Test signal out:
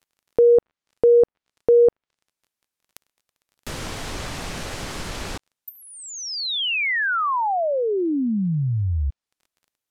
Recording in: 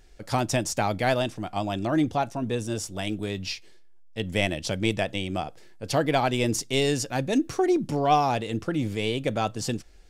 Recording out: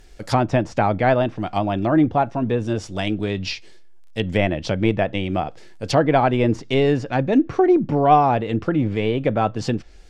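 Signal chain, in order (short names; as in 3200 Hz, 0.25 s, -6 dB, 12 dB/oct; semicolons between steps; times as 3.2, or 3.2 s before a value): crackle 24/s -53 dBFS; treble ducked by the level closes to 1800 Hz, closed at -23.5 dBFS; gain +7 dB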